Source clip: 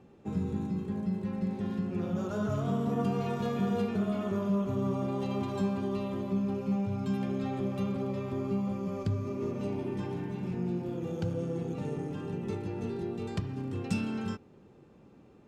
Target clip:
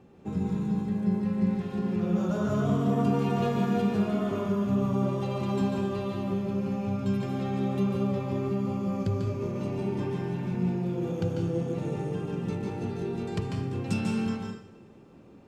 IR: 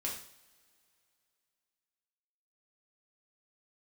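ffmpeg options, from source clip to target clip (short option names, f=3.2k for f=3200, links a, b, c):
-filter_complex "[0:a]asplit=2[a][b];[1:a]atrim=start_sample=2205,adelay=144[c];[b][c]afir=irnorm=-1:irlink=0,volume=-2.5dB[d];[a][d]amix=inputs=2:normalize=0,volume=1.5dB"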